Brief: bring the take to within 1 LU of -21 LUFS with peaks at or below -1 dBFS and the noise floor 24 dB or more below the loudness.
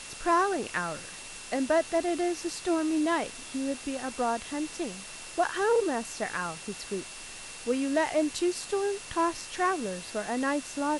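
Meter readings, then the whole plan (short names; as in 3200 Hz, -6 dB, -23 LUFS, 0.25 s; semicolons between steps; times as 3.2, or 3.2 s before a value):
steady tone 2700 Hz; tone level -49 dBFS; noise floor -43 dBFS; noise floor target -54 dBFS; loudness -30.0 LUFS; peak -15.0 dBFS; loudness target -21.0 LUFS
-> notch 2700 Hz, Q 30; noise print and reduce 11 dB; gain +9 dB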